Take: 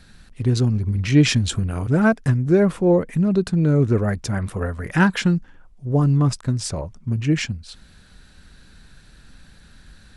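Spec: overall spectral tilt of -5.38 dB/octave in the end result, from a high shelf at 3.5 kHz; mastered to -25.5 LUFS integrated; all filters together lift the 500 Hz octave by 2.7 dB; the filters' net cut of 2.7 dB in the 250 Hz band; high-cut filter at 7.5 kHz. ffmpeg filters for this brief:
-af "lowpass=7500,equalizer=f=250:t=o:g=-6,equalizer=f=500:t=o:g=5.5,highshelf=f=3500:g=8.5,volume=0.562"

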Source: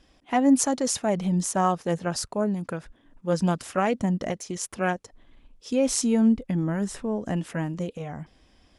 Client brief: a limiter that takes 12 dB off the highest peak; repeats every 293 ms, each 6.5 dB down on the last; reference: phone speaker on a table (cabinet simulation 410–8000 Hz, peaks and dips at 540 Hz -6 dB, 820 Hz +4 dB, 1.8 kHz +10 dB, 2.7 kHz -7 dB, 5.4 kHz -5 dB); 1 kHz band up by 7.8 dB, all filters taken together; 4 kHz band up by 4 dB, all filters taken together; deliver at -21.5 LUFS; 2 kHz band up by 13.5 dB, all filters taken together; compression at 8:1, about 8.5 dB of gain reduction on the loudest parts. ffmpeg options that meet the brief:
-af "equalizer=f=1000:t=o:g=6.5,equalizer=f=2000:t=o:g=6,equalizer=f=4000:t=o:g=8,acompressor=threshold=0.0794:ratio=8,alimiter=limit=0.0891:level=0:latency=1,highpass=f=410:w=0.5412,highpass=f=410:w=1.3066,equalizer=f=540:t=q:w=4:g=-6,equalizer=f=820:t=q:w=4:g=4,equalizer=f=1800:t=q:w=4:g=10,equalizer=f=2700:t=q:w=4:g=-7,equalizer=f=5400:t=q:w=4:g=-5,lowpass=f=8000:w=0.5412,lowpass=f=8000:w=1.3066,aecho=1:1:293|586|879|1172|1465|1758:0.473|0.222|0.105|0.0491|0.0231|0.0109,volume=3.76"

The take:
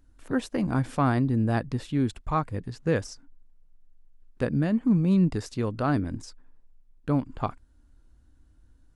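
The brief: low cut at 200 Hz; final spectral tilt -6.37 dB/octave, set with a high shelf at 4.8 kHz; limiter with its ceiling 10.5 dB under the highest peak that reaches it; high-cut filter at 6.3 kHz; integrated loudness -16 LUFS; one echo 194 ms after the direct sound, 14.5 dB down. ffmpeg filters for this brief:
-af "highpass=200,lowpass=6300,highshelf=f=4800:g=3.5,alimiter=limit=0.0794:level=0:latency=1,aecho=1:1:194:0.188,volume=7.5"

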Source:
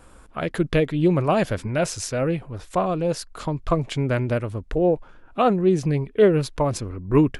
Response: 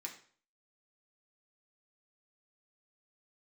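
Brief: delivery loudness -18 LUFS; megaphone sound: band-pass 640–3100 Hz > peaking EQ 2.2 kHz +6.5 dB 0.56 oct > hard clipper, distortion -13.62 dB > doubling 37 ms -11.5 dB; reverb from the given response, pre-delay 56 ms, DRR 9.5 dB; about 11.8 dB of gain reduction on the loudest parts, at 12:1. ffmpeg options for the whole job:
-filter_complex "[0:a]acompressor=threshold=0.0708:ratio=12,asplit=2[s0][s1];[1:a]atrim=start_sample=2205,adelay=56[s2];[s1][s2]afir=irnorm=-1:irlink=0,volume=0.447[s3];[s0][s3]amix=inputs=2:normalize=0,highpass=640,lowpass=3100,equalizer=f=2200:t=o:w=0.56:g=6.5,asoftclip=type=hard:threshold=0.0531,asplit=2[s4][s5];[s5]adelay=37,volume=0.266[s6];[s4][s6]amix=inputs=2:normalize=0,volume=7.5"

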